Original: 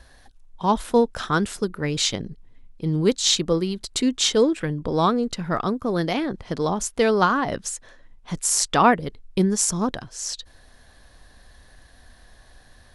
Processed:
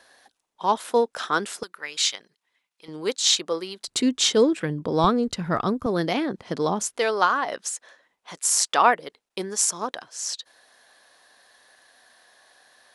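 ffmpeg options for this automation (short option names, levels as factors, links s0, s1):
-af "asetnsamples=n=441:p=0,asendcmd='1.63 highpass f 1200;2.88 highpass f 550;3.88 highpass f 140;5.04 highpass f 49;5.86 highpass f 170;6.97 highpass f 540',highpass=400"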